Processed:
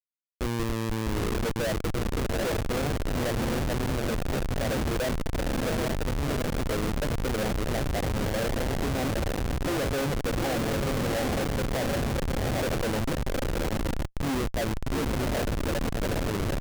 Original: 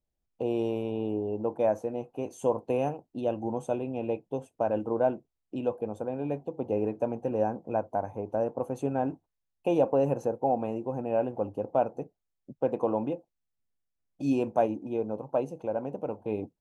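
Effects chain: echo that smears into a reverb 783 ms, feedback 59%, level -3.5 dB; Schmitt trigger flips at -28 dBFS; trim +1.5 dB

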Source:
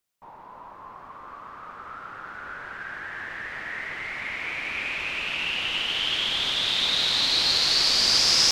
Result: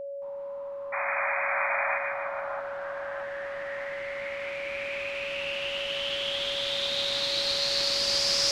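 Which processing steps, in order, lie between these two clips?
painted sound noise, 0.92–1.98 s, 580–2500 Hz -22 dBFS; two-band feedback delay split 1.3 kHz, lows 636 ms, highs 153 ms, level -3 dB; whistle 560 Hz -26 dBFS; trim -8 dB

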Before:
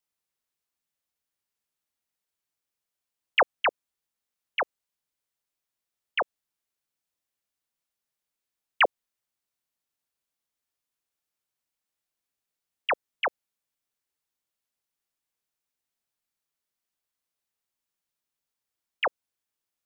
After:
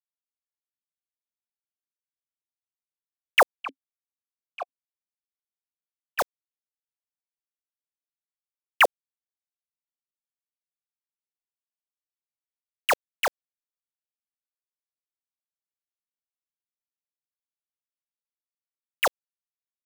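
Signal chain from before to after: bit crusher 5-bit; 3.55–6.19 s: stepped vowel filter 7.9 Hz; trim +3 dB

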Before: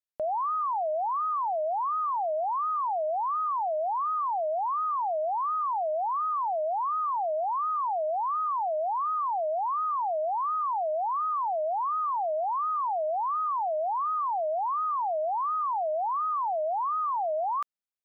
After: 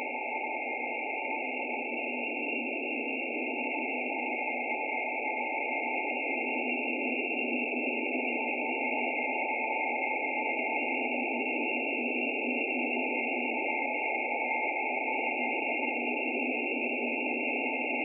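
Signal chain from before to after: fade-in on the opening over 4.28 s; ring modulator 1.5 kHz; Paulstretch 6.5×, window 1.00 s, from 2.96 s

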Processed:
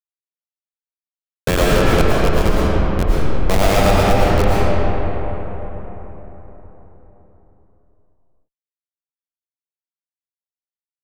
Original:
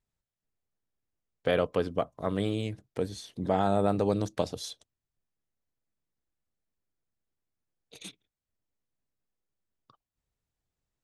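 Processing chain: median filter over 9 samples; tilt shelf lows -10 dB, about 640 Hz; Schmitt trigger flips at -22 dBFS; algorithmic reverb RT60 4.4 s, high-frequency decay 0.45×, pre-delay 75 ms, DRR -7 dB; loudness maximiser +23.5 dB; trim -2.5 dB

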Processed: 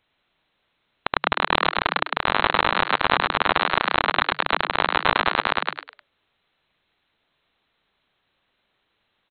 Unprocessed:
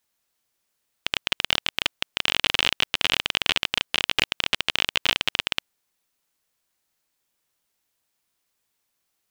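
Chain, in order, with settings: 4.06–4.69 s: cycle switcher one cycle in 3, muted; frequency inversion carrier 4 kHz; on a send: frequency-shifting echo 102 ms, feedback 37%, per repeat +140 Hz, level -9 dB; on the sum: loudness maximiser +11.5 dB; trim -1 dB

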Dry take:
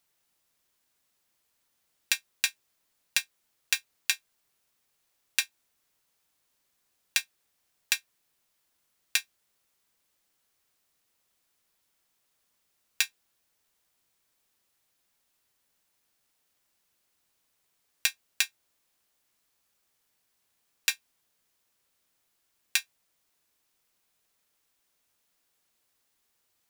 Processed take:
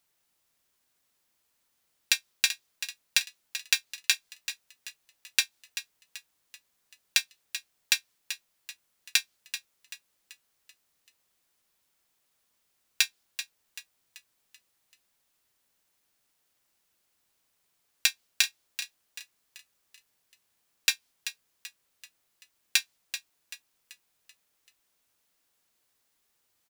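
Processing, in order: frequency-shifting echo 385 ms, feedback 47%, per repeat +38 Hz, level -11 dB; dynamic bell 4.5 kHz, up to +5 dB, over -45 dBFS, Q 1

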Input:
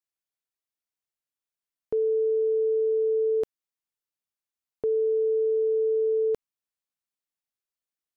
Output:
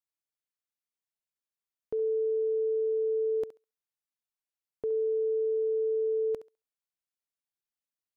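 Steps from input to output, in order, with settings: thinning echo 68 ms, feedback 19%, high-pass 420 Hz, level -12 dB; trim -5.5 dB

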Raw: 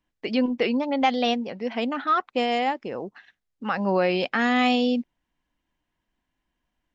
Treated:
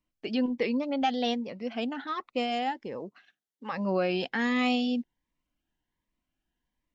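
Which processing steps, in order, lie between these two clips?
2.98–3.71 s: high-pass 110 Hz -> 330 Hz 12 dB/octave; Shepard-style phaser rising 1.3 Hz; trim -4 dB

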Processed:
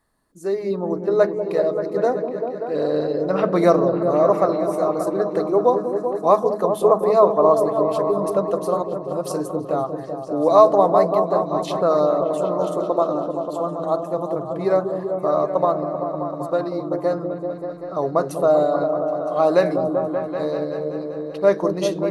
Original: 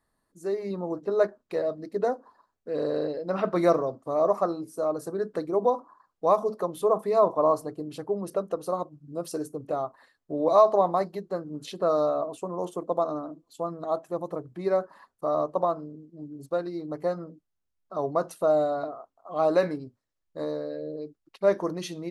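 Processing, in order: delay with an opening low-pass 193 ms, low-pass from 400 Hz, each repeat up 1 oct, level -3 dB; trim +6 dB

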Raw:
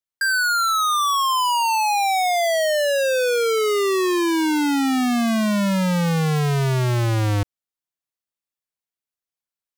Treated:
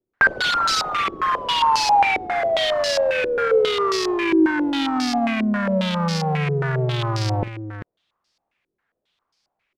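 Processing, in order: integer overflow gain 26 dB; on a send: multi-tap echo 47/392 ms -16.5/-10.5 dB; on the sum: loudness maximiser +25.5 dB; step-sequenced low-pass 7.4 Hz 370–5000 Hz; trim -7 dB

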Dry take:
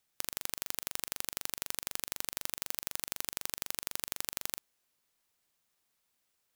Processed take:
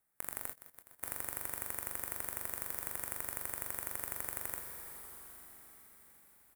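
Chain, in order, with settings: high-order bell 4.2 kHz -13 dB; reverberation RT60 5.7 s, pre-delay 28 ms, DRR 5 dB; 0.53–1.03 s: slow attack 547 ms; doubling 23 ms -13 dB; saturation -11 dBFS, distortion -14 dB

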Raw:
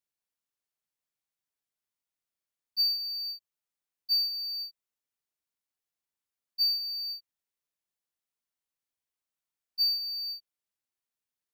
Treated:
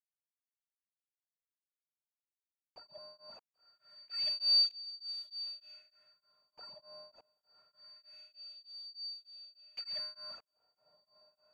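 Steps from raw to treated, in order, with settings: spectral levelling over time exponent 0.4; bit crusher 7-bit; peak limiter -22 dBFS, peak gain reduction 4 dB; tone controls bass -3 dB, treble +7 dB; echo that smears into a reverb 1058 ms, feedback 44%, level -15 dB; LFO low-pass sine 0.25 Hz 830–4100 Hz; tremolo of two beating tones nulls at 3.3 Hz

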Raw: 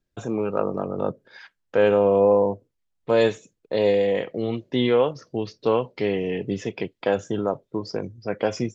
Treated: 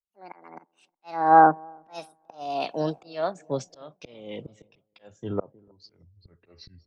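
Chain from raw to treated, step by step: gliding tape speed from 179% -> 76%; slow attack 442 ms; feedback echo behind a low-pass 314 ms, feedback 57%, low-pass 1 kHz, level -20 dB; three bands expanded up and down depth 100%; trim -3 dB

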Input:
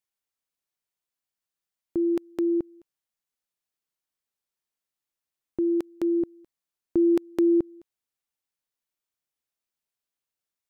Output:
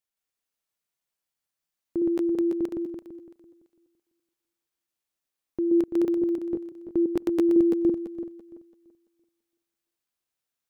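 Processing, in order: backward echo that repeats 168 ms, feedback 50%, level 0 dB; trim -1.5 dB

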